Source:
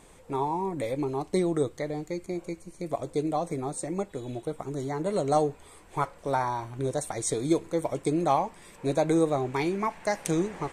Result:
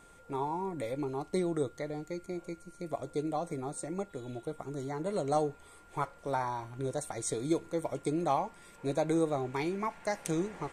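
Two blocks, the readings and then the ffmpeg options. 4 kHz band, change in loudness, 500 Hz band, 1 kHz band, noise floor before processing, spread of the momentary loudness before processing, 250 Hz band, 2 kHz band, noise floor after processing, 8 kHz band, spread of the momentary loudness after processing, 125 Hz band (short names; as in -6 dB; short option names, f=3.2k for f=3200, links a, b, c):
-5.5 dB, -5.5 dB, -5.5 dB, -5.5 dB, -53 dBFS, 10 LU, -5.5 dB, -5.5 dB, -57 dBFS, -5.5 dB, 10 LU, -5.5 dB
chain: -af "aeval=exprs='val(0)+0.00224*sin(2*PI*1400*n/s)':c=same,volume=-5.5dB"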